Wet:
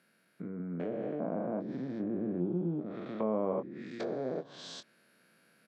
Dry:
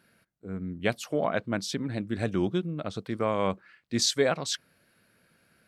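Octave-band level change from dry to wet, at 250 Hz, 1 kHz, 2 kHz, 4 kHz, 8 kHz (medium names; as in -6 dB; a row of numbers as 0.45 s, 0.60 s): -3.5 dB, -9.0 dB, -17.0 dB, -18.5 dB, under -20 dB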